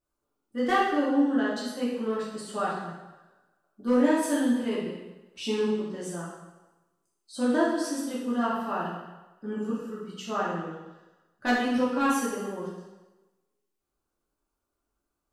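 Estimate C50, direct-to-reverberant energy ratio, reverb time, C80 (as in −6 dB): 0.5 dB, −8.5 dB, 1.1 s, 3.5 dB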